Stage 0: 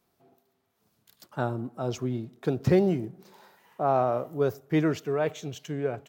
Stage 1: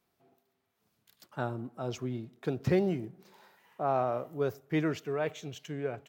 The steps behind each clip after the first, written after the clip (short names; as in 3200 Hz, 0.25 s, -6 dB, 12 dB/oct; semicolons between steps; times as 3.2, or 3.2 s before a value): bell 2300 Hz +4 dB 1.4 oct; gain -5.5 dB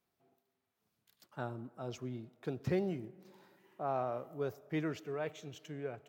on a send at -22.5 dB: HPF 210 Hz + reverb RT60 2.8 s, pre-delay 60 ms; on the sum: gain -6.5 dB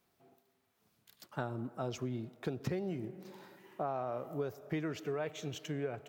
compressor 10:1, threshold -41 dBFS, peak gain reduction 13 dB; gain +8 dB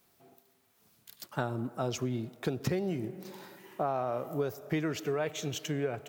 high shelf 4900 Hz +7.5 dB; gain +5 dB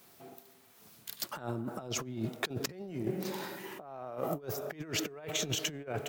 HPF 100 Hz 6 dB/oct; negative-ratio compressor -39 dBFS, ratio -0.5; gain +3 dB